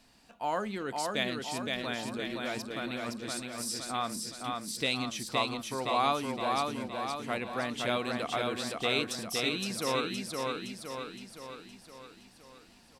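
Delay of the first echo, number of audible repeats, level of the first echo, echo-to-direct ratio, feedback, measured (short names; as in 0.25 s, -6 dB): 0.516 s, 6, -3.0 dB, -1.5 dB, 54%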